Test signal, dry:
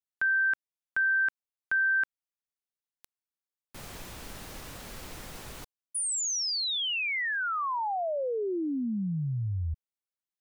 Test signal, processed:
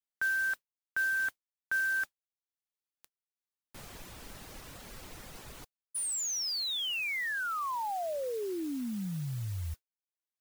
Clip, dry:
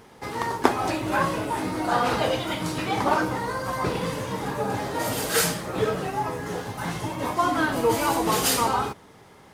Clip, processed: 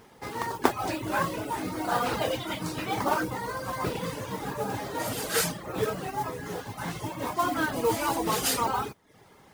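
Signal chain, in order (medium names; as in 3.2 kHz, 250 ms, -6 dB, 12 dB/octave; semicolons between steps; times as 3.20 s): modulation noise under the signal 17 dB; reverb removal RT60 0.52 s; trim -3.5 dB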